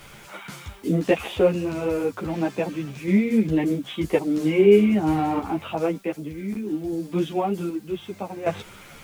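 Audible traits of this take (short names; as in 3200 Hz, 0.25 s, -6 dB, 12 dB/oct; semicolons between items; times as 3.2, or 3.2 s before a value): random-step tremolo 1.3 Hz, depth 75%; a quantiser's noise floor 10-bit, dither triangular; a shimmering, thickened sound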